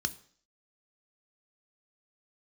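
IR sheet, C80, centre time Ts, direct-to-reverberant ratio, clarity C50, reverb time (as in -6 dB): 22.0 dB, 3 ms, 10.5 dB, 19.0 dB, 0.55 s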